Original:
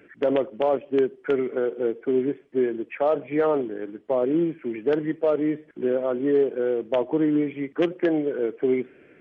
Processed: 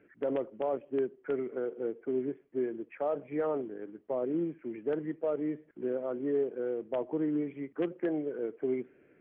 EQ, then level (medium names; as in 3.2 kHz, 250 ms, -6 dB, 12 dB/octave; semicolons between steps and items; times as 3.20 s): distance through air 440 m; -8.5 dB